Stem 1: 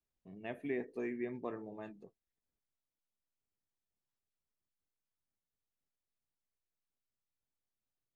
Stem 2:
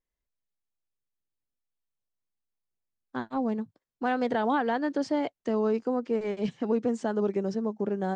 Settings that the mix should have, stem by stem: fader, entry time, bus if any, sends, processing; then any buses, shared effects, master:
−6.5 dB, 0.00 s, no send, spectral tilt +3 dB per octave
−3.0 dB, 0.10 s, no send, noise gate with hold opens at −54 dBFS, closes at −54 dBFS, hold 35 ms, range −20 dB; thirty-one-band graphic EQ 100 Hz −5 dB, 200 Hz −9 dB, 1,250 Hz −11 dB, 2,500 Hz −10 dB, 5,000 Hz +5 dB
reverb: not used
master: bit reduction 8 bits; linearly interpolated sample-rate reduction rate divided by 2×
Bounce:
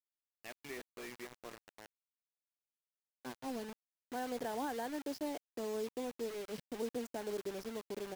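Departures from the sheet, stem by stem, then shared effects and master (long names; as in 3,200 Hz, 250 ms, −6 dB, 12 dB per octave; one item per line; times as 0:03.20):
stem 2 −3.0 dB → −11.5 dB
master: missing linearly interpolated sample-rate reduction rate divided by 2×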